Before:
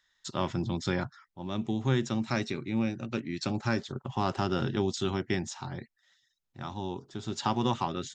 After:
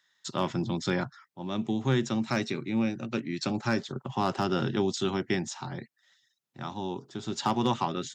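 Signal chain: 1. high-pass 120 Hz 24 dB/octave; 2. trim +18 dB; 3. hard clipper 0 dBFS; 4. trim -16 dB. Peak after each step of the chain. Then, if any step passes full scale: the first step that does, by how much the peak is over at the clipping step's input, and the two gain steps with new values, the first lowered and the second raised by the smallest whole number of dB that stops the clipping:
-14.0 dBFS, +4.0 dBFS, 0.0 dBFS, -16.0 dBFS; step 2, 4.0 dB; step 2 +14 dB, step 4 -12 dB

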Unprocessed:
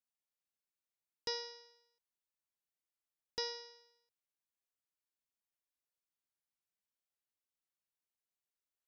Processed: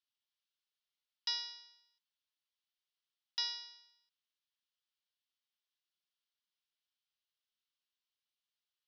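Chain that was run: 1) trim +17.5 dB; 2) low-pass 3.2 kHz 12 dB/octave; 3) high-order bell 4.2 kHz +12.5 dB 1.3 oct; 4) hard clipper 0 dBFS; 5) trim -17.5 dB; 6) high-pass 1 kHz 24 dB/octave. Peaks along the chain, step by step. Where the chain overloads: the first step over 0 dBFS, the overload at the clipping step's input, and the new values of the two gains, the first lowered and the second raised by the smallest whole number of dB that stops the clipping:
-7.0 dBFS, -11.0 dBFS, -3.5 dBFS, -3.5 dBFS, -21.0 dBFS, -23.0 dBFS; nothing clips

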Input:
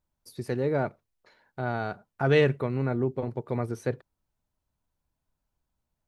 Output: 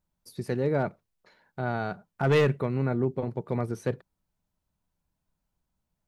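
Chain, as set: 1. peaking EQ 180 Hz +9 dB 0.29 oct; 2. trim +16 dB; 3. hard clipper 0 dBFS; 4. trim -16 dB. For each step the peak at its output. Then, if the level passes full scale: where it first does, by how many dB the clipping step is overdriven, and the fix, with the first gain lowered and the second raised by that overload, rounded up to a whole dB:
-9.5 dBFS, +6.5 dBFS, 0.0 dBFS, -16.0 dBFS; step 2, 6.5 dB; step 2 +9 dB, step 4 -9 dB

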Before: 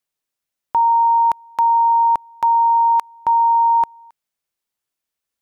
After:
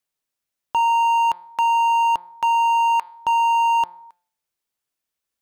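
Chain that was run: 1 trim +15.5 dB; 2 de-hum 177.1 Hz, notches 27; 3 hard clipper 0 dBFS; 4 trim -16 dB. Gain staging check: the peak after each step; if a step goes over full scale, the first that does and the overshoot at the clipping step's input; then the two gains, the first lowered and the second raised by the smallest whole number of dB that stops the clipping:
+4.5 dBFS, +5.0 dBFS, 0.0 dBFS, -16.0 dBFS; step 1, 5.0 dB; step 1 +10.5 dB, step 4 -11 dB

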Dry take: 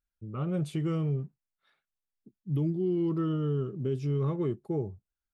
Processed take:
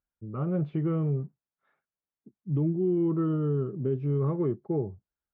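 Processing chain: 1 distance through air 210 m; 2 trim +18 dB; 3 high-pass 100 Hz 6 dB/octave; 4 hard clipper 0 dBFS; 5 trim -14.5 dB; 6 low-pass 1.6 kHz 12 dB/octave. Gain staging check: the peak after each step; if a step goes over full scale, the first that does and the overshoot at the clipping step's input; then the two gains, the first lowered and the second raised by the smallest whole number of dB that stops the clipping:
-21.0 dBFS, -3.0 dBFS, -3.0 dBFS, -3.0 dBFS, -17.5 dBFS, -17.5 dBFS; nothing clips

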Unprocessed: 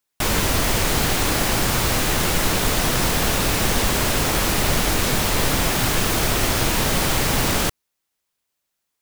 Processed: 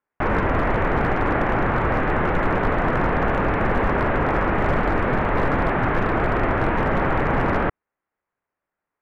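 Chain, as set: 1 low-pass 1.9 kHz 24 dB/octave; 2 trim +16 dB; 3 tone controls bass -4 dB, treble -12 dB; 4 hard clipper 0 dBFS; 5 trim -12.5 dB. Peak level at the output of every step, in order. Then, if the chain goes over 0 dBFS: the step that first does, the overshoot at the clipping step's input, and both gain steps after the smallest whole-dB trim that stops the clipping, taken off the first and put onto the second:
-8.5 dBFS, +7.5 dBFS, +5.5 dBFS, 0.0 dBFS, -12.5 dBFS; step 2, 5.5 dB; step 2 +10 dB, step 5 -6.5 dB

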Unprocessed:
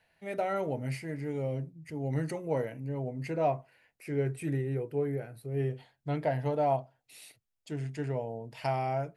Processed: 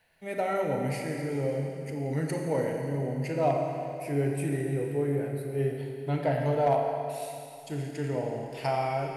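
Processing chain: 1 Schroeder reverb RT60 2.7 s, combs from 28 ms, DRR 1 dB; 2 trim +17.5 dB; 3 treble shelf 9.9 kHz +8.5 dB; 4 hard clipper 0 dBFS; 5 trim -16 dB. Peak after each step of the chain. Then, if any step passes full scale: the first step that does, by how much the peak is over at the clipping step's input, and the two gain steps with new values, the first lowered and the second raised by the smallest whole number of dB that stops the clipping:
-14.0 dBFS, +3.5 dBFS, +3.5 dBFS, 0.0 dBFS, -16.0 dBFS; step 2, 3.5 dB; step 2 +13.5 dB, step 5 -12 dB

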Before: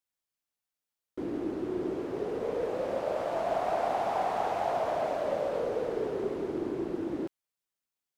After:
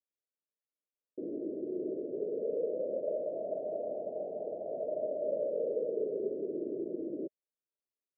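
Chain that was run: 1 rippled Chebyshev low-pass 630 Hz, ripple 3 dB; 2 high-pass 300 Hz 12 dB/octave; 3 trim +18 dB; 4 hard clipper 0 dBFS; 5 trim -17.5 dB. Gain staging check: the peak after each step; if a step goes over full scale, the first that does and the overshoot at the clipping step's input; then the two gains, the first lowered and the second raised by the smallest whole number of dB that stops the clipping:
-22.0 dBFS, -23.0 dBFS, -5.0 dBFS, -5.0 dBFS, -22.5 dBFS; nothing clips

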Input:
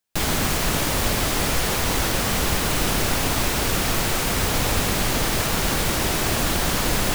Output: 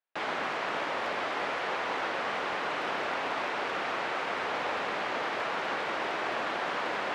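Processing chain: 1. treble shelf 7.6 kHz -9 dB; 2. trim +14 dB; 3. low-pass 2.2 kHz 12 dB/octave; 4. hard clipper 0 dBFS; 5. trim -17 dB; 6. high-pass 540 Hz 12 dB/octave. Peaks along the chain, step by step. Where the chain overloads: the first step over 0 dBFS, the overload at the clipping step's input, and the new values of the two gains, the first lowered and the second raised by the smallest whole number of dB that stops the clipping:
-8.5 dBFS, +5.5 dBFS, +4.0 dBFS, 0.0 dBFS, -17.0 dBFS, -19.0 dBFS; step 2, 4.0 dB; step 2 +10 dB, step 5 -13 dB

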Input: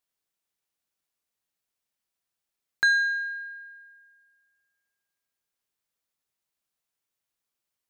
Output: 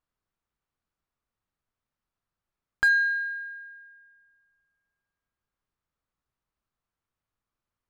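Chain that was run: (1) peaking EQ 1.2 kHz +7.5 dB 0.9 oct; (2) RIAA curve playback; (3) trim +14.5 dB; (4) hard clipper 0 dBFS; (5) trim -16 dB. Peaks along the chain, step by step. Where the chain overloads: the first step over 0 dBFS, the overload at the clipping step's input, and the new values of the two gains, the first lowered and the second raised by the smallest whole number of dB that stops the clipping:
-8.5 dBFS, -10.0 dBFS, +4.5 dBFS, 0.0 dBFS, -16.0 dBFS; step 3, 4.5 dB; step 3 +9.5 dB, step 5 -11 dB

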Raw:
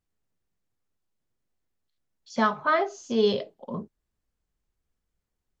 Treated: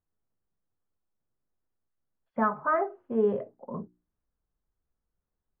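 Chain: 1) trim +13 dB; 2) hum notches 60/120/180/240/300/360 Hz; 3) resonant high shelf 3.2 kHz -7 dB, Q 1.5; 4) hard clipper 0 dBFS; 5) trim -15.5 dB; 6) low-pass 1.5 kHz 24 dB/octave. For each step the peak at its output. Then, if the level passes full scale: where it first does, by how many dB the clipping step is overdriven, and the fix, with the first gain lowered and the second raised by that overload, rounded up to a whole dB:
+2.0 dBFS, +2.0 dBFS, +3.0 dBFS, 0.0 dBFS, -15.5 dBFS, -15.5 dBFS; step 1, 3.0 dB; step 1 +10 dB, step 5 -12.5 dB

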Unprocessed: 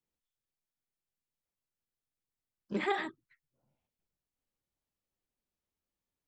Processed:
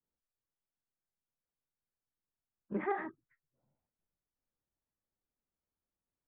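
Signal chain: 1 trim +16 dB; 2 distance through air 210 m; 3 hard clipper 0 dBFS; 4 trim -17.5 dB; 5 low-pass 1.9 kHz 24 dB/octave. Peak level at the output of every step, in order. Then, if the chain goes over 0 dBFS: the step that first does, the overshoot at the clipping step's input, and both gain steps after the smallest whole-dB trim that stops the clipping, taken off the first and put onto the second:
-2.0 dBFS, -4.0 dBFS, -4.0 dBFS, -21.5 dBFS, -22.5 dBFS; nothing clips

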